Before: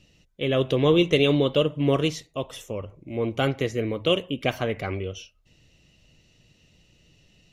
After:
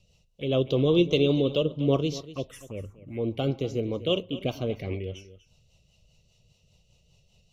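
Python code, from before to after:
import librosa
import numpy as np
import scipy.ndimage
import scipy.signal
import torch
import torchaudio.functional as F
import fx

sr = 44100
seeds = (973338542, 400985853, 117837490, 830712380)

y = fx.env_phaser(x, sr, low_hz=280.0, high_hz=1800.0, full_db=-24.0)
y = fx.rotary(y, sr, hz=5.0)
y = y + 10.0 ** (-16.0 / 20.0) * np.pad(y, (int(243 * sr / 1000.0), 0))[:len(y)]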